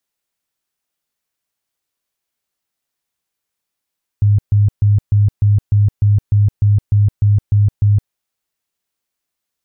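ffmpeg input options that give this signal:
-f lavfi -i "aevalsrc='0.398*sin(2*PI*103*mod(t,0.3))*lt(mod(t,0.3),17/103)':d=3.9:s=44100"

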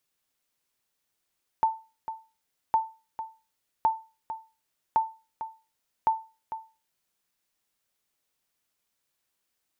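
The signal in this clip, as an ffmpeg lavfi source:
-f lavfi -i "aevalsrc='0.178*(sin(2*PI*890*mod(t,1.11))*exp(-6.91*mod(t,1.11)/0.31)+0.251*sin(2*PI*890*max(mod(t,1.11)-0.45,0))*exp(-6.91*max(mod(t,1.11)-0.45,0)/0.31))':d=5.55:s=44100"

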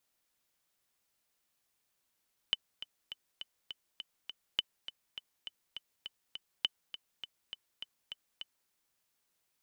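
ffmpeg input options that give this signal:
-f lavfi -i "aevalsrc='pow(10,(-15-13.5*gte(mod(t,7*60/204),60/204))/20)*sin(2*PI*3020*mod(t,60/204))*exp(-6.91*mod(t,60/204)/0.03)':d=6.17:s=44100"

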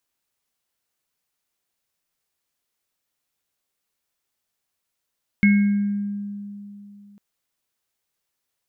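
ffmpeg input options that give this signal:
-f lavfi -i "aevalsrc='0.266*pow(10,-3*t/3)*sin(2*PI*203*t)+0.0316*pow(10,-3*t/1.14)*sin(2*PI*1610*t)+0.141*pow(10,-3*t/0.66)*sin(2*PI*2180*t)':d=1.75:s=44100"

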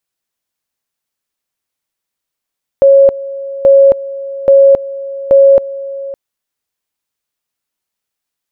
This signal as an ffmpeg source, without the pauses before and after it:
-f lavfi -i "aevalsrc='pow(10,(-2-17.5*gte(mod(t,0.83),0.27))/20)*sin(2*PI*550*t)':d=3.32:s=44100"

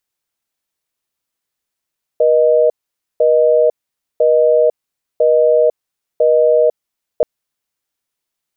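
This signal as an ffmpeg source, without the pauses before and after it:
-f lavfi -i "aevalsrc='0.282*(sin(2*PI*480*t)+sin(2*PI*620*t))*clip(min(mod(t,1),0.5-mod(t,1))/0.005,0,1)':d=5.03:s=44100"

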